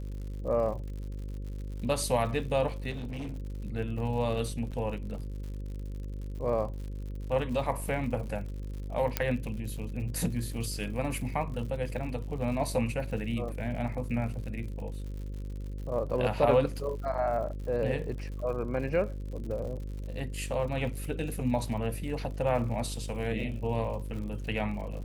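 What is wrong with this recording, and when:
buzz 50 Hz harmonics 11 -37 dBFS
crackle 94/s -40 dBFS
2.9–3.4 clipped -33.5 dBFS
4.71–4.72 gap 7.3 ms
9.17 pop -10 dBFS

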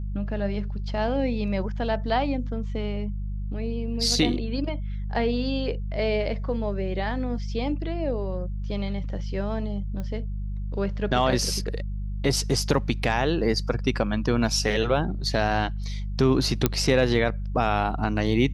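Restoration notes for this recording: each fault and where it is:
hum 50 Hz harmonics 4 -30 dBFS
10 pop -22 dBFS
16.66 pop -5 dBFS

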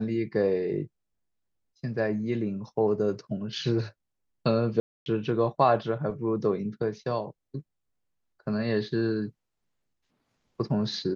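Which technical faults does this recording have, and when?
4.8–5.06 gap 0.261 s

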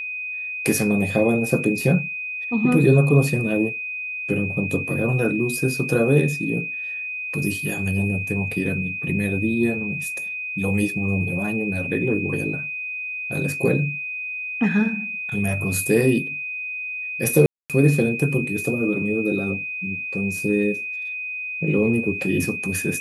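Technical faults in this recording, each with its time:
tone 2500 Hz -27 dBFS
17.46–17.7 gap 0.237 s

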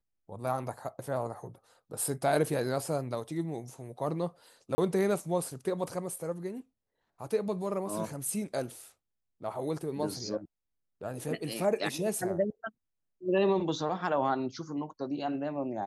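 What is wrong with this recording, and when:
4.75–4.78 gap 30 ms

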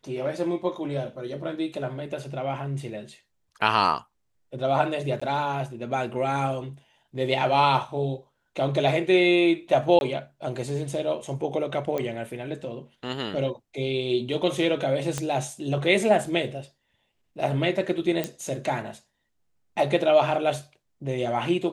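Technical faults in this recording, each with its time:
5.2–5.21 gap 15 ms
9.99–10.01 gap 21 ms
11.98 pop -16 dBFS
15.18 pop -14 dBFS
18.24 pop -12 dBFS

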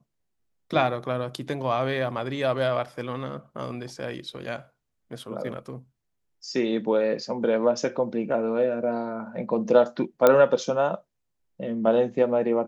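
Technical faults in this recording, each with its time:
10.27 pop -5 dBFS

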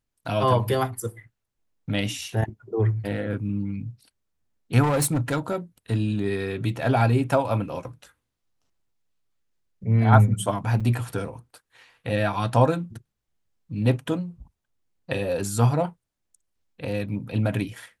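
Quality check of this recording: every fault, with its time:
4.82–5.56 clipped -19 dBFS
10.8–10.81 gap 5.6 ms

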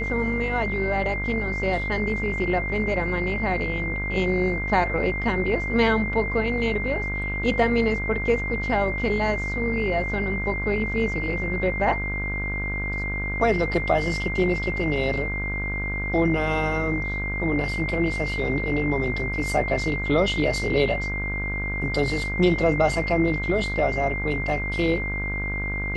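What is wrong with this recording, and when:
buzz 50 Hz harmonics 33 -30 dBFS
tone 2100 Hz -28 dBFS

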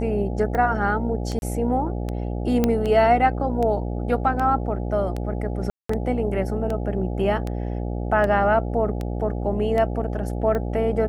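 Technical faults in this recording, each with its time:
buzz 60 Hz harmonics 14 -27 dBFS
tick 78 rpm -16 dBFS
1.39–1.42 gap 31 ms
2.64 pop -7 dBFS
5.7–5.89 gap 0.194 s

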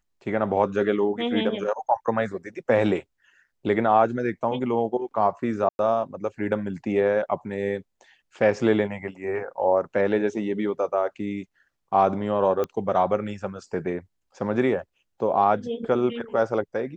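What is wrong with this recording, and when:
5.69–5.79 gap 0.101 s
12.64 pop -16 dBFS

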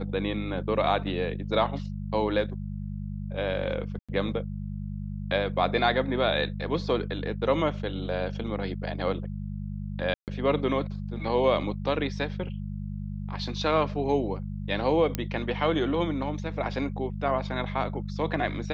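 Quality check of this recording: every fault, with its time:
hum 50 Hz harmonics 4 -34 dBFS
3.99–4.09 gap 96 ms
10.14–10.28 gap 0.138 s
15.15 pop -12 dBFS

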